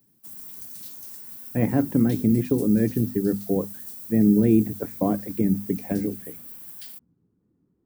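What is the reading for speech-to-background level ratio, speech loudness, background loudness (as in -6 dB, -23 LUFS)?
14.0 dB, -23.0 LUFS, -37.0 LUFS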